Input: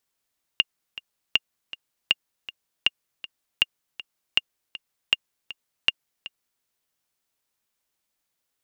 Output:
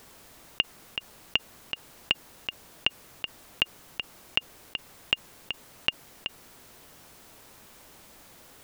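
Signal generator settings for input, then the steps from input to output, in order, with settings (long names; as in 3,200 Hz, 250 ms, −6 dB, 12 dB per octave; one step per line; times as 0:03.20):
click track 159 BPM, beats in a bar 2, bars 8, 2,820 Hz, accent 17 dB −4.5 dBFS
tilt shelving filter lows +5.5 dB, about 1,400 Hz
envelope flattener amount 50%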